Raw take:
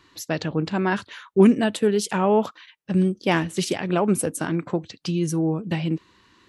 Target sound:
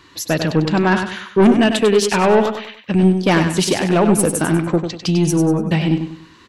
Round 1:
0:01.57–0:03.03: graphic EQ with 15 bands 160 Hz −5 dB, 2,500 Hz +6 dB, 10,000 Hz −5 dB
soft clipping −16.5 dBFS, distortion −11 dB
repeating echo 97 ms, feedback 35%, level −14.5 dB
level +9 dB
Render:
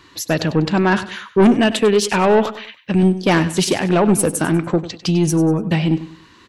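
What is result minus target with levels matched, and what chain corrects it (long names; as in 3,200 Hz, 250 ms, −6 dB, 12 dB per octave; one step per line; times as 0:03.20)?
echo-to-direct −7 dB
0:01.57–0:03.03: graphic EQ with 15 bands 160 Hz −5 dB, 2,500 Hz +6 dB, 10,000 Hz −5 dB
soft clipping −16.5 dBFS, distortion −11 dB
repeating echo 97 ms, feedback 35%, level −7.5 dB
level +9 dB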